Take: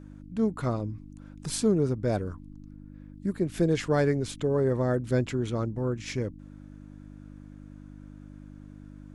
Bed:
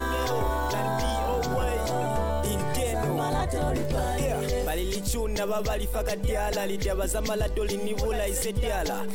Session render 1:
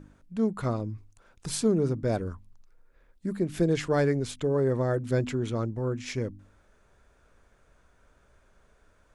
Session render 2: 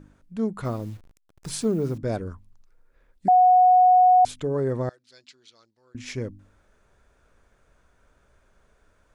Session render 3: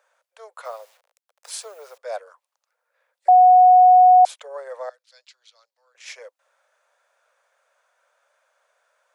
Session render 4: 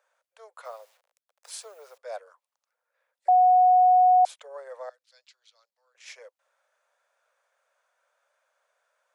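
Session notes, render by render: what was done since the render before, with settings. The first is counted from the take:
hum removal 50 Hz, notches 6
0:00.65–0:01.98: hold until the input has moved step −48 dBFS; 0:03.28–0:04.25: beep over 733 Hz −12 dBFS; 0:04.89–0:05.95: resonant band-pass 4,500 Hz, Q 3.4
Butterworth high-pass 510 Hz 72 dB per octave; dynamic equaliser 910 Hz, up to +5 dB, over −31 dBFS, Q 0.84
level −6.5 dB

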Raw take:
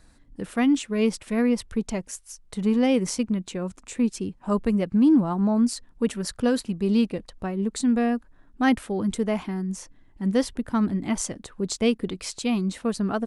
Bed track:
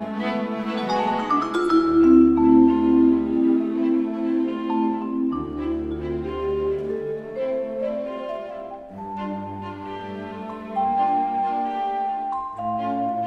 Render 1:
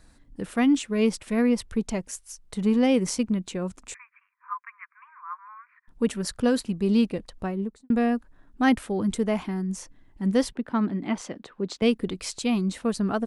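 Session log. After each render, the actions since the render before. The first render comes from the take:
0:03.94–0:05.88: Chebyshev band-pass filter 1,000–2,400 Hz, order 5
0:07.46–0:07.90: fade out and dull
0:10.52–0:11.82: three-way crossover with the lows and the highs turned down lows −18 dB, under 160 Hz, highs −18 dB, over 4,400 Hz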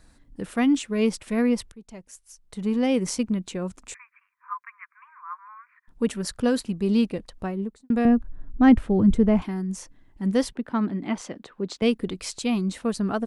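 0:01.72–0:03.13: fade in linear, from −24 dB
0:08.05–0:09.42: RIAA equalisation playback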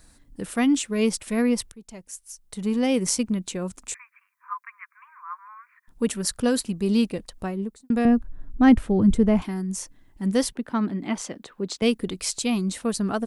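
high-shelf EQ 5,800 Hz +11.5 dB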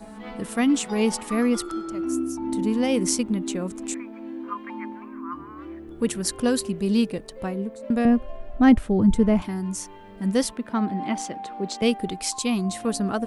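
mix in bed track −13 dB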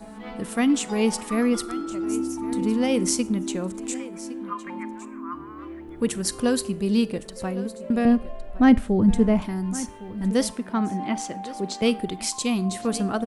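single-tap delay 1,111 ms −17 dB
four-comb reverb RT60 0.43 s, combs from 32 ms, DRR 19.5 dB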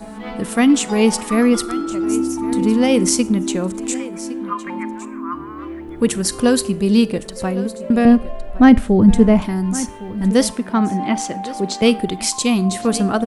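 level +7.5 dB
brickwall limiter −1 dBFS, peak gain reduction 3 dB

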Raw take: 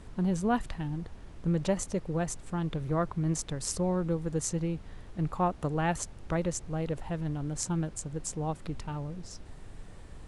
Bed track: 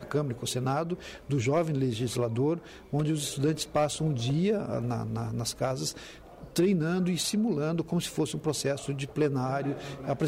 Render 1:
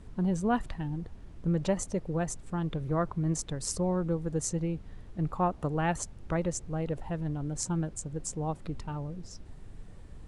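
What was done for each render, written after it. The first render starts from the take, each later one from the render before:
broadband denoise 6 dB, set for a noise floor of −48 dBFS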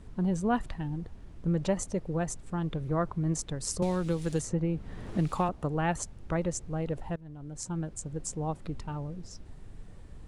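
0:03.82–0:05.49: multiband upward and downward compressor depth 100%
0:07.16–0:08.09: fade in, from −18.5 dB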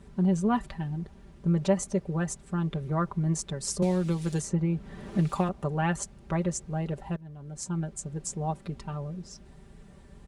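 high-pass filter 50 Hz 12 dB per octave
comb filter 5.1 ms, depth 69%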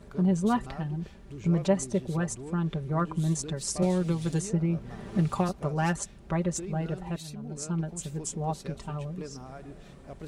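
mix in bed track −14.5 dB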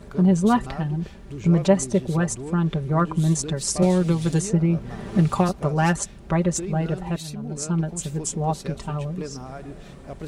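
level +7 dB

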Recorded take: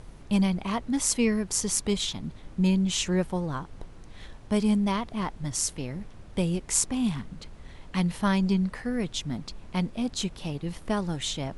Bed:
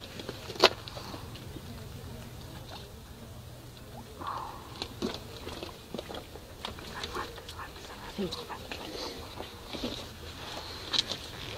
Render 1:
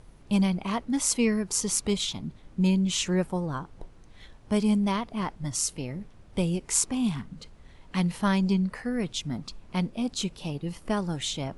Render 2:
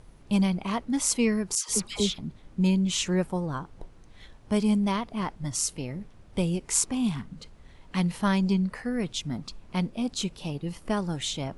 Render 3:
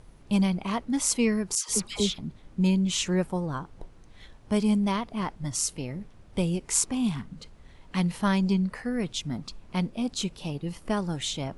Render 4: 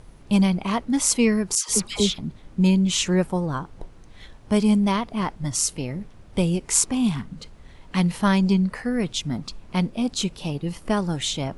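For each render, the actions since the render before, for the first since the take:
noise reduction from a noise print 6 dB
0:01.55–0:02.18: all-pass dispersion lows, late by 129 ms, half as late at 1,300 Hz
no processing that can be heard
level +5 dB

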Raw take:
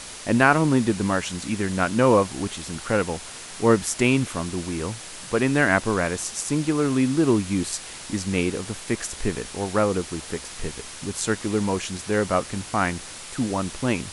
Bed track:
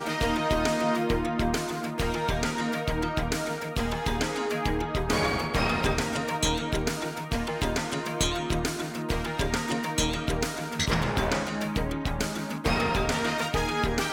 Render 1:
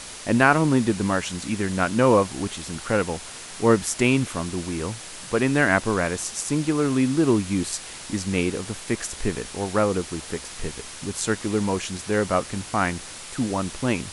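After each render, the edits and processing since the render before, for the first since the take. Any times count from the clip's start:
no processing that can be heard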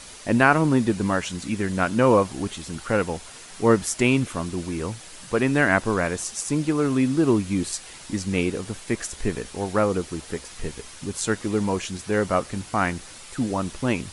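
broadband denoise 6 dB, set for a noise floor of −39 dBFS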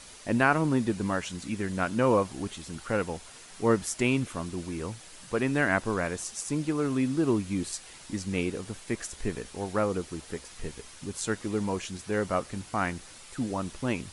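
level −6 dB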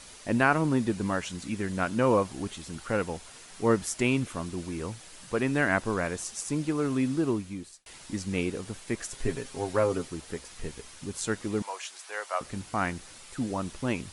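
0:07.13–0:07.86: fade out
0:09.10–0:10.08: comb filter 7.5 ms
0:11.62–0:12.41: high-pass filter 650 Hz 24 dB per octave

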